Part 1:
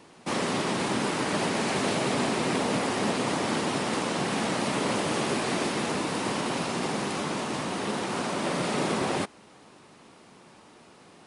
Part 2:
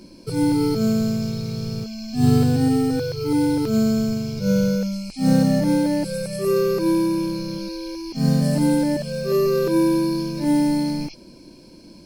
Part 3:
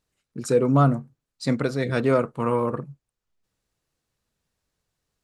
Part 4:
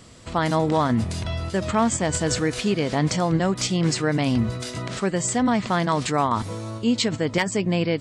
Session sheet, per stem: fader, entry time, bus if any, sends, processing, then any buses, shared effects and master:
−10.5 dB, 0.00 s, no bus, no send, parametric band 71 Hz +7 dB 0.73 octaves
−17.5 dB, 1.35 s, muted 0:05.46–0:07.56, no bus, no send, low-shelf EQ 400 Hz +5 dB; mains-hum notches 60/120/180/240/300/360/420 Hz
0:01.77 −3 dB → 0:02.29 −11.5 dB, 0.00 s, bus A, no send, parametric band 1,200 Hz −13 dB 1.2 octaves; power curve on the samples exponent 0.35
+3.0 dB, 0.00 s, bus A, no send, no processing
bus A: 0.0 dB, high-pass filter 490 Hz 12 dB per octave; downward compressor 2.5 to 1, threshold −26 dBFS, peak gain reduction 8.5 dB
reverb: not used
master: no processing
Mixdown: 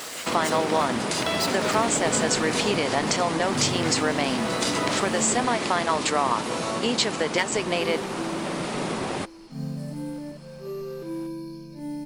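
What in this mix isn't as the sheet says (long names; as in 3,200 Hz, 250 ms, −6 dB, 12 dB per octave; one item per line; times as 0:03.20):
stem 1 −10.5 dB → −1.5 dB
stem 3: missing parametric band 1,200 Hz −13 dB 1.2 octaves
stem 4 +3.0 dB → +12.0 dB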